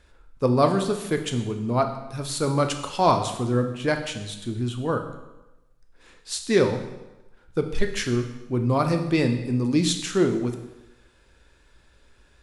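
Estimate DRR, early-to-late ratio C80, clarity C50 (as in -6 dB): 5.5 dB, 11.0 dB, 9.0 dB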